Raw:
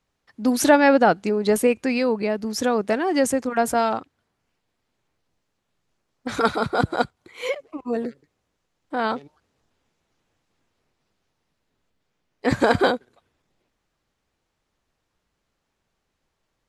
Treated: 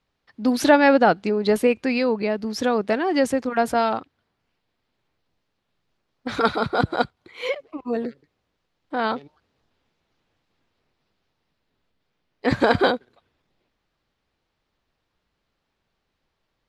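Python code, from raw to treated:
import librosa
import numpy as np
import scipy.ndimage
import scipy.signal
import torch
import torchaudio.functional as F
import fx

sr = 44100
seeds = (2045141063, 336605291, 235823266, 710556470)

y = fx.high_shelf_res(x, sr, hz=5600.0, db=-7.0, q=1.5)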